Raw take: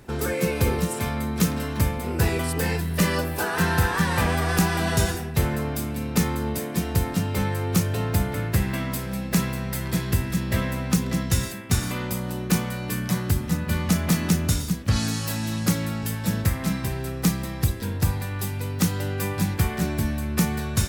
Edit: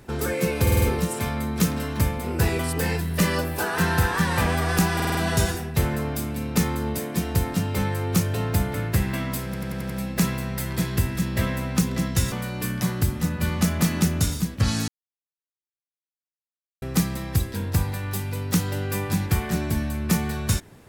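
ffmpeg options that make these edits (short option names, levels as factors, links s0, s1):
-filter_complex "[0:a]asplit=17[s0][s1][s2][s3][s4][s5][s6][s7][s8][s9][s10][s11][s12][s13][s14][s15][s16];[s0]atrim=end=0.672[s17];[s1]atrim=start=0.618:end=0.672[s18];[s2]atrim=start=0.618:end=0.672[s19];[s3]atrim=start=0.618:end=0.672[s20];[s4]atrim=start=0.618:end=4.802[s21];[s5]atrim=start=4.748:end=4.802[s22];[s6]atrim=start=4.748:end=4.802[s23];[s7]atrim=start=4.748:end=4.802[s24];[s8]atrim=start=4.748:end=9.142[s25];[s9]atrim=start=9.048:end=9.142[s26];[s10]atrim=start=9.048:end=9.142[s27];[s11]atrim=start=9.048:end=9.142[s28];[s12]atrim=start=9.048:end=9.142[s29];[s13]atrim=start=9.048:end=11.472[s30];[s14]atrim=start=12.598:end=15.16,asetpts=PTS-STARTPTS,afade=t=out:st=2.558:d=0.004:c=hsin[s31];[s15]atrim=start=15.16:end=17.1,asetpts=PTS-STARTPTS,volume=0[s32];[s16]atrim=start=17.1,asetpts=PTS-STARTPTS,afade=t=in:d=0.004:c=hsin[s33];[s17][s18]acrossfade=d=0.004:c1=hsin:c2=hsin[s34];[s34][s19]acrossfade=d=0.004:c1=hsin:c2=hsin[s35];[s35][s20]acrossfade=d=0.004:c1=hsin:c2=hsin[s36];[s36][s21]acrossfade=d=0.004:c1=hsin:c2=hsin[s37];[s37][s22]acrossfade=d=0.004:c1=hsin:c2=hsin[s38];[s38][s23]acrossfade=d=0.004:c1=hsin:c2=hsin[s39];[s39][s24]acrossfade=d=0.004:c1=hsin:c2=hsin[s40];[s40][s25]acrossfade=d=0.004:c1=hsin:c2=hsin[s41];[s41][s26]acrossfade=d=0.004:c1=hsin:c2=hsin[s42];[s42][s27]acrossfade=d=0.004:c1=hsin:c2=hsin[s43];[s43][s28]acrossfade=d=0.004:c1=hsin:c2=hsin[s44];[s44][s29]acrossfade=d=0.004:c1=hsin:c2=hsin[s45];[s45][s30]acrossfade=d=0.004:c1=hsin:c2=hsin[s46];[s31][s32][s33]concat=n=3:v=0:a=1[s47];[s46][s47]acrossfade=d=0.004:c1=hsin:c2=hsin"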